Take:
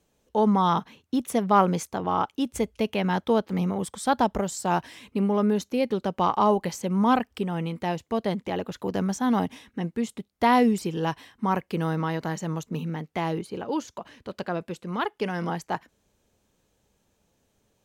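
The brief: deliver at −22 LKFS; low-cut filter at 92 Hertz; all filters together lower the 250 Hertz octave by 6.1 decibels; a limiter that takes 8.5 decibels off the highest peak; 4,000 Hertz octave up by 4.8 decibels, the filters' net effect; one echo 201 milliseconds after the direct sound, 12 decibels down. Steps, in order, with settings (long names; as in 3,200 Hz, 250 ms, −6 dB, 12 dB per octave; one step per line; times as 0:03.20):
high-pass filter 92 Hz
parametric band 250 Hz −8 dB
parametric band 4,000 Hz +6.5 dB
brickwall limiter −16 dBFS
single-tap delay 201 ms −12 dB
level +8 dB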